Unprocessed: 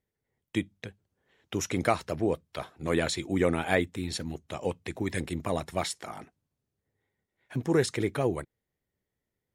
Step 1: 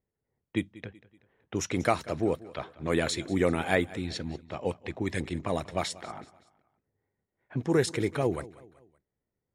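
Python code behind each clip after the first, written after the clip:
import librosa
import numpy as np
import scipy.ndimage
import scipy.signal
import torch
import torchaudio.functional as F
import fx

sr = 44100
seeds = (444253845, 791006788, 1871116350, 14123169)

y = fx.env_lowpass(x, sr, base_hz=1400.0, full_db=-24.5)
y = fx.echo_feedback(y, sr, ms=189, feedback_pct=45, wet_db=-19.5)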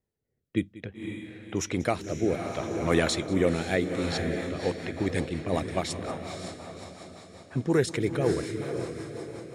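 y = fx.echo_diffused(x, sr, ms=531, feedback_pct=50, wet_db=-7)
y = fx.rotary_switch(y, sr, hz=0.6, then_hz=5.5, switch_at_s=3.76)
y = y * 10.0 ** (3.5 / 20.0)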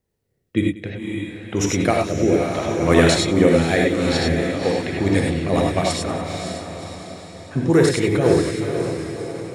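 y = fx.rev_gated(x, sr, seeds[0], gate_ms=120, shape='rising', drr_db=0.0)
y = y * 10.0 ** (6.5 / 20.0)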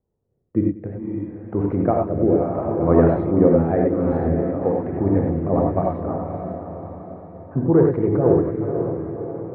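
y = scipy.signal.sosfilt(scipy.signal.butter(4, 1100.0, 'lowpass', fs=sr, output='sos'), x)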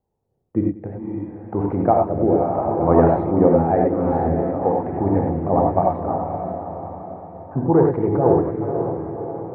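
y = fx.peak_eq(x, sr, hz=830.0, db=11.5, octaves=0.55)
y = y * 10.0 ** (-1.0 / 20.0)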